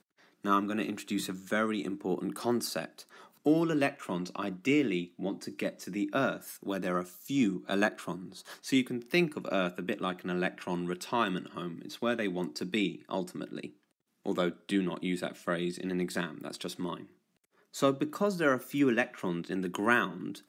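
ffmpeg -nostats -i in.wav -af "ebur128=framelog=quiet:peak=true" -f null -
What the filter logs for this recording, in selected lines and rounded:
Integrated loudness:
  I:         -32.2 LUFS
  Threshold: -42.5 LUFS
Loudness range:
  LRA:         3.2 LU
  Threshold: -52.9 LUFS
  LRA low:   -34.7 LUFS
  LRA high:  -31.5 LUFS
True peak:
  Peak:      -11.9 dBFS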